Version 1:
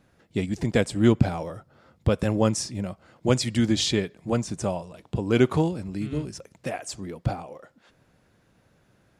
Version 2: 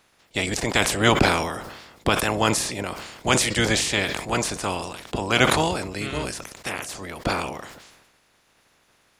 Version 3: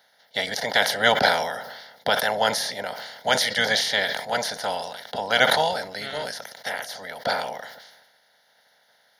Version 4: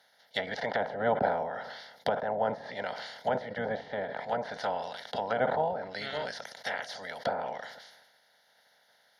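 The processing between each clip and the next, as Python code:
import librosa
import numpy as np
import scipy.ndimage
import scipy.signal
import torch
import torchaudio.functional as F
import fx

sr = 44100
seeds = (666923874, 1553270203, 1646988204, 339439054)

y1 = fx.spec_clip(x, sr, under_db=23)
y1 = fx.sustainer(y1, sr, db_per_s=48.0)
y2 = scipy.signal.sosfilt(scipy.signal.butter(2, 310.0, 'highpass', fs=sr, output='sos'), y1)
y2 = fx.fixed_phaser(y2, sr, hz=1700.0, stages=8)
y2 = y2 * librosa.db_to_amplitude(4.0)
y3 = fx.env_lowpass_down(y2, sr, base_hz=800.0, full_db=-20.5)
y3 = y3 * librosa.db_to_amplitude(-4.0)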